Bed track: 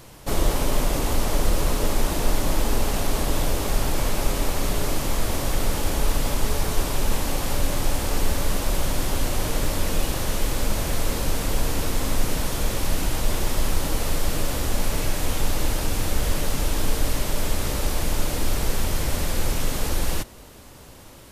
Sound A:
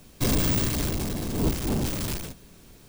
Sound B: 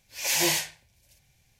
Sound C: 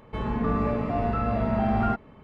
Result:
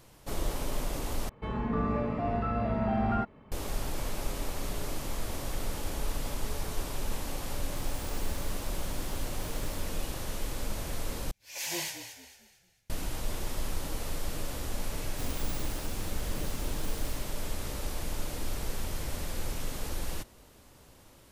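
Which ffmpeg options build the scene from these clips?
-filter_complex "[1:a]asplit=2[a][b];[0:a]volume=-11dB[c];[a]acompressor=threshold=-31dB:ratio=6:attack=3.2:release=140:knee=1:detection=peak[d];[2:a]asplit=5[e][f][g][h][i];[f]adelay=224,afreqshift=-41,volume=-10dB[j];[g]adelay=448,afreqshift=-82,volume=-18.4dB[k];[h]adelay=672,afreqshift=-123,volume=-26.8dB[l];[i]adelay=896,afreqshift=-164,volume=-35.2dB[m];[e][j][k][l][m]amix=inputs=5:normalize=0[n];[c]asplit=3[o][p][q];[o]atrim=end=1.294[r];[3:a]atrim=end=2.23,asetpts=PTS-STARTPTS,volume=-4.5dB[s];[p]atrim=start=3.516:end=11.314[t];[n]atrim=end=1.59,asetpts=PTS-STARTPTS,volume=-10.5dB[u];[q]atrim=start=12.896[v];[d]atrim=end=2.88,asetpts=PTS-STARTPTS,volume=-17dB,afade=t=in:d=0.004:c=hsin,afade=t=out:st=2.876:d=0.004:c=hsin,adelay=7550[w];[b]atrim=end=2.88,asetpts=PTS-STARTPTS,volume=-17.5dB,afade=t=in:d=0.004:c=hsin,afade=t=out:st=2.876:d=0.004:c=hsin,adelay=14970[x];[r][s]acrossfade=d=0.004:c1=hsin:c2=hsin[y];[y][t]acrossfade=d=0.004:c1=hsin:c2=hsin[z];[z][u]acrossfade=d=0.004:c1=hsin:c2=hsin[aa];[aa][v]acrossfade=d=0.004:c1=hsin:c2=hsin[ab];[ab][w][x]amix=inputs=3:normalize=0"

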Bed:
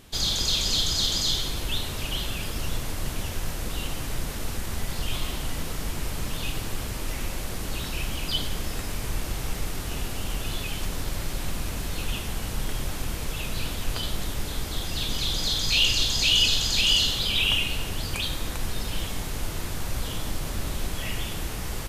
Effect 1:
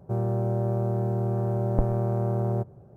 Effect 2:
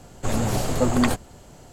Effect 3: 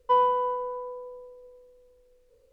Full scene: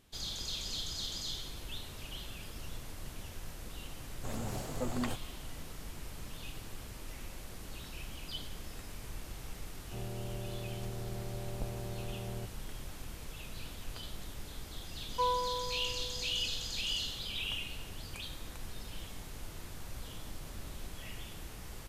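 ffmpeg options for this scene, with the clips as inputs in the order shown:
-filter_complex "[0:a]volume=-14.5dB[a];[2:a]atrim=end=1.72,asetpts=PTS-STARTPTS,volume=-15.5dB,afade=t=in:d=0.004:c=hsin,afade=t=out:st=1.716:d=0.004:c=hsin,adelay=4000[b];[1:a]atrim=end=2.96,asetpts=PTS-STARTPTS,volume=-16dB,afade=t=in:d=0.004:c=hsin,afade=t=out:st=2.956:d=0.004:c=hsin,adelay=9830[c];[3:a]atrim=end=2.52,asetpts=PTS-STARTPTS,volume=-10dB,afade=t=in:d=0.004:c=hsin,afade=t=out:st=2.516:d=0.004:c=hsin,adelay=15090[d];[a][b][c][d]amix=inputs=4:normalize=0"

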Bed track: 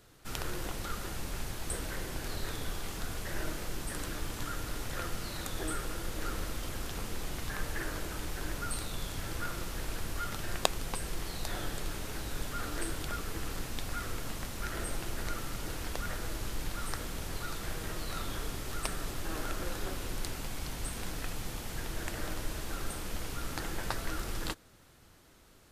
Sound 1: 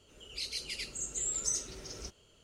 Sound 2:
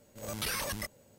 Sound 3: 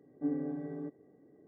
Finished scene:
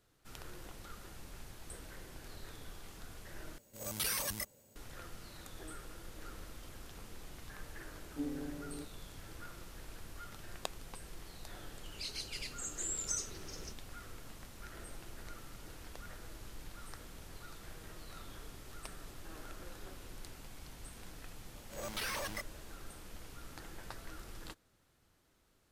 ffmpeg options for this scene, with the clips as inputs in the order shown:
-filter_complex "[2:a]asplit=2[a][b];[0:a]volume=-12.5dB[c];[a]highshelf=f=5.6k:g=9.5[d];[b]asplit=2[e][f];[f]highpass=f=720:p=1,volume=15dB,asoftclip=type=tanh:threshold=-22dB[g];[e][g]amix=inputs=2:normalize=0,lowpass=f=5.5k:p=1,volume=-6dB[h];[c]asplit=2[i][j];[i]atrim=end=3.584[k];[d]atrim=end=1.18,asetpts=PTS-STARTPTS,volume=-5.5dB[l];[j]atrim=start=4.756[m];[3:a]atrim=end=1.47,asetpts=PTS-STARTPTS,volume=-6dB,afade=t=in:d=0.004:c=hsin,afade=t=out:st=1.466:d=0.004:c=hsin,adelay=7950[n];[1:a]atrim=end=2.43,asetpts=PTS-STARTPTS,volume=-4.5dB,afade=t=in:d=0.004:c=hsin,afade=t=out:st=2.426:d=0.004:c=hsin,adelay=11630[o];[h]atrim=end=1.18,asetpts=PTS-STARTPTS,volume=-7dB,afade=t=in:d=0.004:c=hsin,afade=t=out:st=1.176:d=0.004:c=hsin,adelay=21550[p];[k][l]acrossfade=d=0.004:c1=hsin:c2=hsin[q];[q][m]acrossfade=d=0.004:c1=hsin:c2=hsin[r];[r][n][o][p]amix=inputs=4:normalize=0"

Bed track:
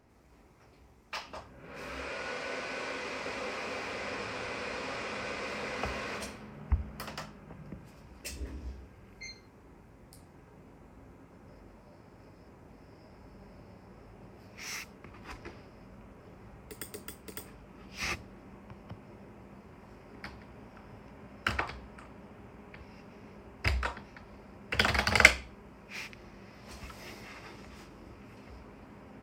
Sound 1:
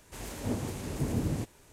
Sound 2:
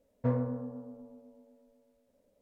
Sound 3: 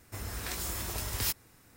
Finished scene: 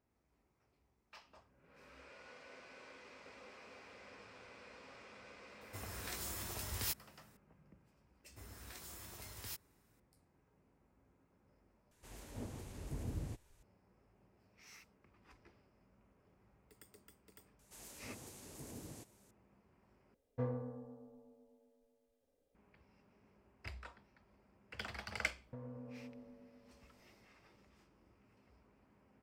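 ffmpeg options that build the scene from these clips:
-filter_complex "[3:a]asplit=2[a][b];[1:a]asplit=2[c][d];[2:a]asplit=2[e][f];[0:a]volume=-19dB[g];[a]highpass=69[h];[b]highpass=64[i];[c]asubboost=boost=7.5:cutoff=90[j];[d]bass=f=250:g=-7,treble=f=4k:g=9[k];[e]aecho=1:1:2.5:0.53[l];[f]acompressor=threshold=-38dB:ratio=6:attack=3.2:release=140:knee=1:detection=peak[m];[g]asplit=3[n][o][p];[n]atrim=end=11.914[q];[j]atrim=end=1.72,asetpts=PTS-STARTPTS,volume=-13.5dB[r];[o]atrim=start=13.626:end=20.144[s];[l]atrim=end=2.41,asetpts=PTS-STARTPTS,volume=-8.5dB[t];[p]atrim=start=22.546[u];[h]atrim=end=1.76,asetpts=PTS-STARTPTS,volume=-7.5dB,afade=t=in:d=0.004:c=hsin,afade=t=out:st=1.756:d=0.004:c=hsin,adelay=247401S[v];[i]atrim=end=1.76,asetpts=PTS-STARTPTS,volume=-15.5dB,afade=t=in:d=0.004:c=hsin,afade=t=out:st=1.756:d=0.004:c=hsin,adelay=8240[w];[k]atrim=end=1.72,asetpts=PTS-STARTPTS,volume=-16.5dB,afade=t=in:d=0.004:c=hsin,afade=t=out:st=1.716:d=0.004:c=hsin,adelay=17590[x];[m]atrim=end=2.41,asetpts=PTS-STARTPTS,volume=-8dB,afade=t=in:d=0.004:c=hsin,afade=t=out:st=2.406:d=0.004:c=hsin,adelay=25290[y];[q][r]acrossfade=d=0.004:c1=hsin:c2=hsin[z];[z][s]acrossfade=d=0.004:c1=hsin:c2=hsin[aa];[aa][t]acrossfade=d=0.004:c1=hsin:c2=hsin[ab];[ab][u]acrossfade=d=0.004:c1=hsin:c2=hsin[ac];[ac][v][w][x][y]amix=inputs=5:normalize=0"

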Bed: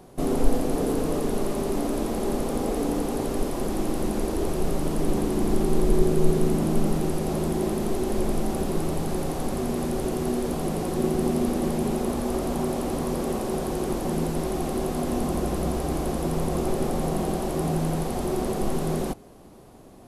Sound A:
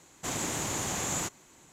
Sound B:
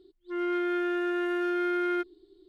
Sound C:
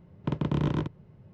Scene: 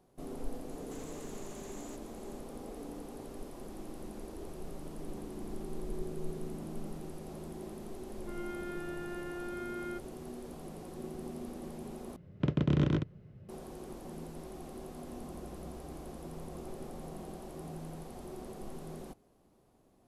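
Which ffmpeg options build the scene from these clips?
-filter_complex "[0:a]volume=-18.5dB[a];[1:a]acompressor=threshold=-45dB:ratio=6:attack=3.2:release=140:knee=1:detection=peak[b];[3:a]equalizer=f=940:w=3.8:g=-10.5[c];[a]asplit=2[d][e];[d]atrim=end=12.164[f];[c]atrim=end=1.33,asetpts=PTS-STARTPTS,volume=-0.5dB[g];[e]atrim=start=13.486[h];[b]atrim=end=1.72,asetpts=PTS-STARTPTS,volume=-6dB,afade=t=in:d=0.004:c=hsin,afade=t=out:st=1.716:d=0.004:c=hsin,adelay=680[i];[2:a]atrim=end=2.48,asetpts=PTS-STARTPTS,volume=-13dB,afade=t=in:d=0.004:c=hsin,afade=t=out:st=2.476:d=0.004:c=hsin,adelay=7960[j];[f][g]acrossfade=d=0.004:c1=hsin:c2=hsin[k];[k][h]acrossfade=d=0.004:c1=hsin:c2=hsin[l];[l][i][j]amix=inputs=3:normalize=0"

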